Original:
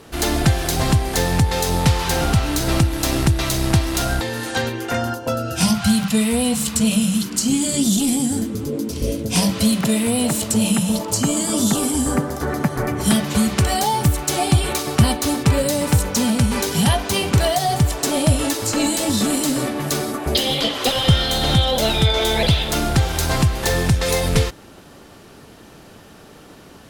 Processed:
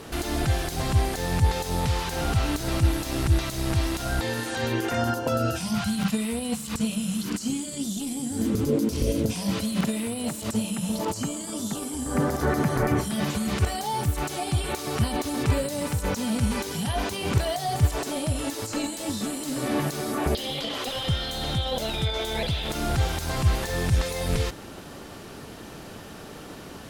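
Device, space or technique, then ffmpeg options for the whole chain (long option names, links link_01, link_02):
de-esser from a sidechain: -filter_complex "[0:a]asplit=2[link_01][link_02];[link_02]highpass=frequency=7000:poles=1,apad=whole_len=1185971[link_03];[link_01][link_03]sidechaincompress=threshold=-40dB:ratio=8:attack=2.4:release=30,volume=2.5dB"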